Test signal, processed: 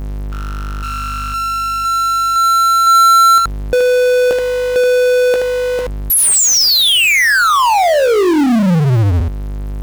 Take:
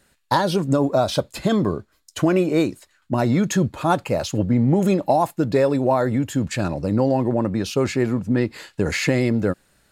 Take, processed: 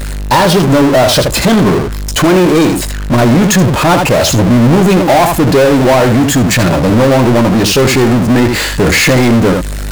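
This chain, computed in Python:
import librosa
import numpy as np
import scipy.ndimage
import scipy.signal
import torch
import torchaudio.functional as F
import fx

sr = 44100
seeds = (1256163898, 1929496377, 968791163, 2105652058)

y = fx.add_hum(x, sr, base_hz=50, snr_db=31)
y = fx.room_early_taps(y, sr, ms=(17, 77), db=(-11.5, -11.0))
y = fx.power_curve(y, sr, exponent=0.35)
y = F.gain(torch.from_numpy(y), 3.0).numpy()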